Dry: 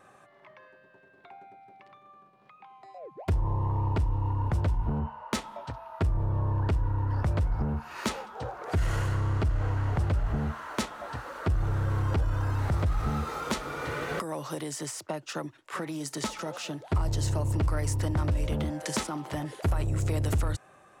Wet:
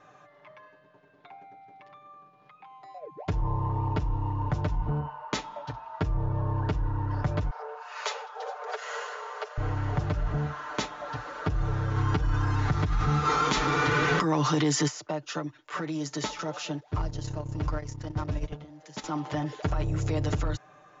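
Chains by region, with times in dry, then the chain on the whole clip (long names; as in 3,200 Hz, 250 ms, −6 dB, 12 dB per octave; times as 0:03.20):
0:07.50–0:09.58: Butterworth high-pass 420 Hz 96 dB per octave + single-tap delay 410 ms −21.5 dB
0:11.96–0:14.88: parametric band 580 Hz −10 dB 0.45 octaves + envelope flattener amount 70%
0:16.80–0:19.04: converter with a step at zero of −43 dBFS + noise gate −26 dBFS, range −18 dB
whole clip: Chebyshev low-pass filter 7,200 Hz, order 10; comb filter 6.7 ms, depth 71%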